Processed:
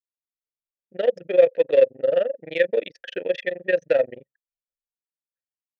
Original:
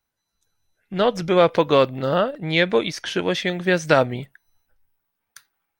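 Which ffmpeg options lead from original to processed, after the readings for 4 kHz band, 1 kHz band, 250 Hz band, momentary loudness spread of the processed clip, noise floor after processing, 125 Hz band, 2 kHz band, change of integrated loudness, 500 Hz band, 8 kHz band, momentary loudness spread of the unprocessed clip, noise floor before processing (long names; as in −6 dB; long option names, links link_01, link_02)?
−13.0 dB, −17.0 dB, −14.0 dB, 10 LU, below −85 dBFS, below −20 dB, −6.0 dB, −1.5 dB, +0.5 dB, below −20 dB, 8 LU, −79 dBFS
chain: -filter_complex "[0:a]tremolo=f=23:d=0.857,asplit=2[link_01][link_02];[link_02]aeval=exprs='0.168*(abs(mod(val(0)/0.168+3,4)-2)-1)':channel_layout=same,volume=-6dB[link_03];[link_01][link_03]amix=inputs=2:normalize=0,anlmdn=100,asplit=3[link_04][link_05][link_06];[link_04]bandpass=frequency=530:width_type=q:width=8,volume=0dB[link_07];[link_05]bandpass=frequency=1840:width_type=q:width=8,volume=-6dB[link_08];[link_06]bandpass=frequency=2480:width_type=q:width=8,volume=-9dB[link_09];[link_07][link_08][link_09]amix=inputs=3:normalize=0,volume=5.5dB"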